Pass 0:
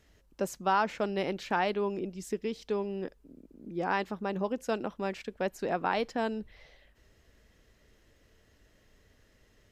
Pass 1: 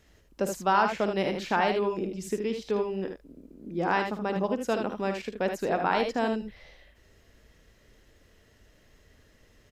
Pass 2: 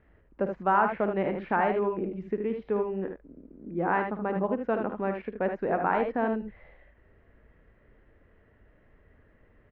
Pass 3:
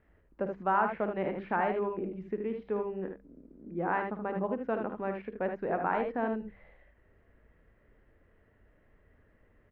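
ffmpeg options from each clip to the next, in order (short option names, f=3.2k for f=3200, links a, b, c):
-af "aecho=1:1:53|77:0.282|0.473,volume=3dB"
-af "lowpass=f=2k:w=0.5412,lowpass=f=2k:w=1.3066"
-af "bandreject=f=66.09:t=h:w=4,bandreject=f=132.18:t=h:w=4,bandreject=f=198.27:t=h:w=4,bandreject=f=264.36:t=h:w=4,bandreject=f=330.45:t=h:w=4,bandreject=f=396.54:t=h:w=4,bandreject=f=462.63:t=h:w=4,volume=-4dB"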